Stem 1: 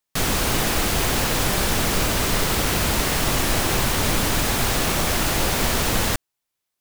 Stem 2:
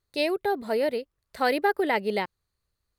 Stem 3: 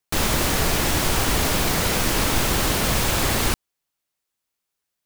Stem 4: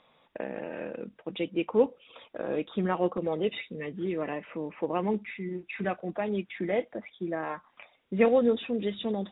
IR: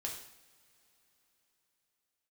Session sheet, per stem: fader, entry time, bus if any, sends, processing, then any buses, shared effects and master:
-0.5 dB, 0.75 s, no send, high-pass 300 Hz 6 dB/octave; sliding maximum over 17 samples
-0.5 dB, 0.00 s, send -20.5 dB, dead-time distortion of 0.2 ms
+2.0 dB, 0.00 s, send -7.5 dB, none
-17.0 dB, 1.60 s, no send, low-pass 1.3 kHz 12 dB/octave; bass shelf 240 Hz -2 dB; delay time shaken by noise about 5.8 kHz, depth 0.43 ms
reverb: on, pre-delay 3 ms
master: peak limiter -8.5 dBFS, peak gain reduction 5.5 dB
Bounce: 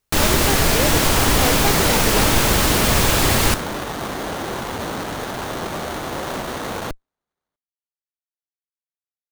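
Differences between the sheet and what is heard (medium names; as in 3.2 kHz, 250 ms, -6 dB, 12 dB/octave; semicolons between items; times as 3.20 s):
stem 4: muted; master: missing peak limiter -8.5 dBFS, peak gain reduction 5.5 dB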